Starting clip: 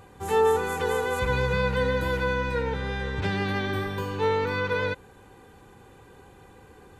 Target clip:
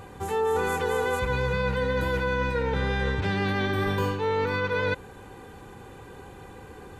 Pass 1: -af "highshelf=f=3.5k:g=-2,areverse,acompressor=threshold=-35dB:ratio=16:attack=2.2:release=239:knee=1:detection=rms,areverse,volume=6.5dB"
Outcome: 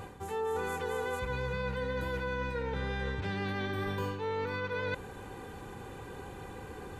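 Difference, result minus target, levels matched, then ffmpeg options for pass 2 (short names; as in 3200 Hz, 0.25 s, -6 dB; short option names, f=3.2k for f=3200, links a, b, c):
compressor: peak gain reduction +8.5 dB
-af "highshelf=f=3.5k:g=-2,areverse,acompressor=threshold=-26dB:ratio=16:attack=2.2:release=239:knee=1:detection=rms,areverse,volume=6.5dB"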